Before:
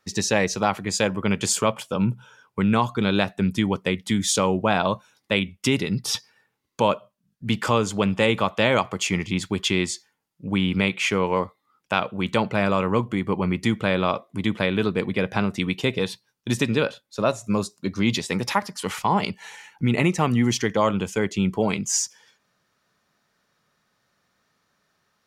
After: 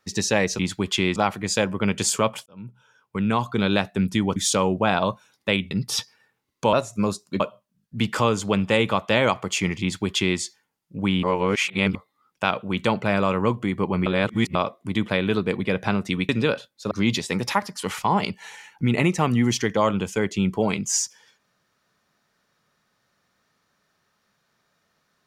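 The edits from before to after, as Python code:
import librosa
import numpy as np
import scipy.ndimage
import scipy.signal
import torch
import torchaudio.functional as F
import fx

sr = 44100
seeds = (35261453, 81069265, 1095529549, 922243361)

y = fx.edit(x, sr, fx.fade_in_span(start_s=1.89, length_s=1.11),
    fx.cut(start_s=3.79, length_s=0.4),
    fx.cut(start_s=5.54, length_s=0.33),
    fx.duplicate(start_s=9.31, length_s=0.57, to_s=0.59),
    fx.reverse_span(start_s=10.72, length_s=0.72),
    fx.reverse_span(start_s=13.55, length_s=0.49),
    fx.cut(start_s=15.78, length_s=0.84),
    fx.move(start_s=17.24, length_s=0.67, to_s=6.89), tone=tone)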